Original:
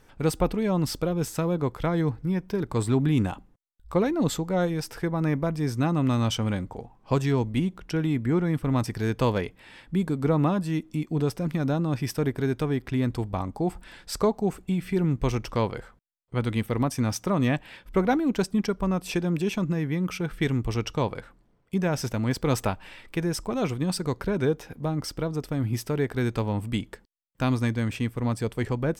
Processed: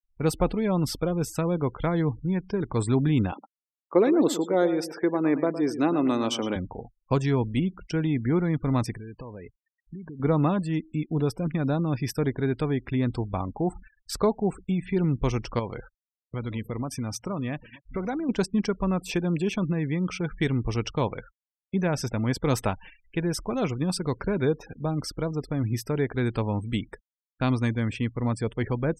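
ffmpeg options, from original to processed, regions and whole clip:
-filter_complex "[0:a]asettb=1/sr,asplit=3[s0][s1][s2];[s0]atrim=end=3.324[s3];[s1]atrim=start=3.32:end=6.56,asetpts=PTS-STARTPTS,afade=t=in:d=0.004:c=qsin,afade=t=out:st=3.236:d=0.004:c=qsin,highpass=f=330:t=q:w=2.1,asplit=2[s4][s5];[s5]adelay=112,lowpass=f=4900:p=1,volume=0.266,asplit=2[s6][s7];[s7]adelay=112,lowpass=f=4900:p=1,volume=0.3,asplit=2[s8][s9];[s9]adelay=112,lowpass=f=4900:p=1,volume=0.3[s10];[s4][s6][s8][s10]amix=inputs=4:normalize=0,atrim=end_sample=142884[s11];[s2]atrim=start=6.556[s12];[s3][s11]acrossfade=d=0.004:c1=hsin:c2=qsin[s13];[s13][s12]acrossfade=d=0.004:c1=qsin:c2=hsin,asettb=1/sr,asplit=3[s14][s15][s16];[s14]atrim=end=8.914[s17];[s15]atrim=start=8.91:end=10.2,asetpts=PTS-STARTPTS,afade=t=in:d=0.004:c=qsin,afade=t=out:st=1.286:d=0.004:c=qsin,bandreject=f=1400:w=7.4,acompressor=threshold=0.0178:ratio=16:attack=3.2:release=140:knee=1:detection=peak[s18];[s16]atrim=start=10.196[s19];[s17][s18]acrossfade=d=0.004:c1=hsin:c2=qsin[s20];[s20][s19]acrossfade=d=0.004:c1=qsin:c2=hsin,asettb=1/sr,asplit=3[s21][s22][s23];[s21]atrim=end=15.594[s24];[s22]atrim=start=15.59:end=18.29,asetpts=PTS-STARTPTS,afade=t=in:d=0.004:c=qsin,afade=t=out:st=2.696:d=0.004:c=qsin,acompressor=threshold=0.0355:ratio=2.5:attack=3.2:release=140:knee=1:detection=peak,aecho=1:1:928:0.1,atrim=end_sample=119070[s25];[s23]atrim=start=18.286[s26];[s24][s25]acrossfade=d=0.004:c1=hsin:c2=qsin[s27];[s27][s26]acrossfade=d=0.004:c1=qsin:c2=hsin,agate=range=0.355:threshold=0.00708:ratio=16:detection=peak,afftfilt=real='re*gte(hypot(re,im),0.00891)':imag='im*gte(hypot(re,im),0.00891)':win_size=1024:overlap=0.75"

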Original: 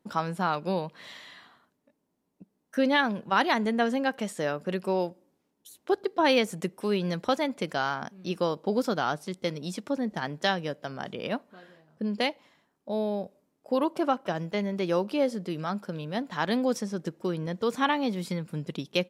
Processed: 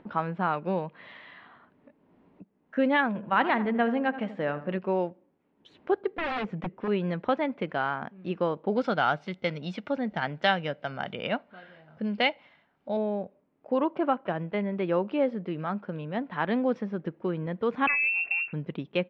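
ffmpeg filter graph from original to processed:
-filter_complex "[0:a]asettb=1/sr,asplit=3[s0][s1][s2];[s0]atrim=end=3.074[s3];[s1]atrim=start=3.07:end=4.79,asetpts=PTS-STARTPTS,afade=t=in:d=0.004:c=qsin,afade=t=out:st=1.716:d=0.004:c=qsin,bandreject=f=400:w=9.5,asplit=2[s4][s5];[s5]adelay=82,lowpass=f=1700:p=1,volume=0.251,asplit=2[s6][s7];[s7]adelay=82,lowpass=f=1700:p=1,volume=0.49,asplit=2[s8][s9];[s9]adelay=82,lowpass=f=1700:p=1,volume=0.49,asplit=2[s10][s11];[s11]adelay=82,lowpass=f=1700:p=1,volume=0.49,asplit=2[s12][s13];[s13]adelay=82,lowpass=f=1700:p=1,volume=0.49[s14];[s4][s6][s8][s10][s12][s14]amix=inputs=6:normalize=0,atrim=end_sample=75852[s15];[s2]atrim=start=4.786[s16];[s3][s15]acrossfade=d=0.004:c1=hsin:c2=qsin[s17];[s17][s16]acrossfade=d=0.004:c1=qsin:c2=hsin,asettb=1/sr,asplit=3[s18][s19][s20];[s18]atrim=end=6.074[s21];[s19]atrim=start=6.07:end=6.88,asetpts=PTS-STARTPTS,afade=t=in:d=0.004:c=qsin,afade=t=out:st=0.806:d=0.004:c=qsin,lowpass=7200,lowshelf=f=170:g=7.5,aeval=exprs='0.0596*(abs(mod(val(0)/0.0596+3,4)-2)-1)':c=same[s22];[s20]atrim=start=6.876[s23];[s21][s22]acrossfade=d=0.004:c1=hsin:c2=qsin[s24];[s24][s23]acrossfade=d=0.004:c1=qsin:c2=hsin,asettb=1/sr,asplit=3[s25][s26][s27];[s25]atrim=end=8.764[s28];[s26]atrim=start=8.76:end=12.97,asetpts=PTS-STARTPTS,afade=t=in:d=0.004:c=qsin,afade=t=out:st=4.206:d=0.004:c=qsin,equalizer=f=8300:t=o:w=2.7:g=14.5,aecho=1:1:1.4:0.33,atrim=end_sample=185661[s29];[s27]atrim=start=12.966[s30];[s28][s29]acrossfade=d=0.004:c1=hsin:c2=qsin[s31];[s31][s30]acrossfade=d=0.004:c1=qsin:c2=hsin,asettb=1/sr,asplit=3[s32][s33][s34];[s32]atrim=end=17.874[s35];[s33]atrim=start=17.87:end=18.53,asetpts=PTS-STARTPTS,afade=t=in:d=0.004:c=qsin,afade=t=out:st=0.656:d=0.004:c=qsin,equalizer=f=260:w=0.45:g=14,acompressor=threshold=0.0794:ratio=4:attack=3.2:release=140:knee=1:detection=peak,lowpass=f=2500:t=q:w=0.5098,lowpass=f=2500:t=q:w=0.6013,lowpass=f=2500:t=q:w=0.9,lowpass=f=2500:t=q:w=2.563,afreqshift=-2900[s36];[s34]atrim=start=18.526[s37];[s35][s36]acrossfade=d=0.004:c1=hsin:c2=qsin[s38];[s38][s37]acrossfade=d=0.004:c1=qsin:c2=hsin,lowpass=f=2700:w=0.5412,lowpass=f=2700:w=1.3066,acompressor=mode=upward:threshold=0.00631:ratio=2.5"

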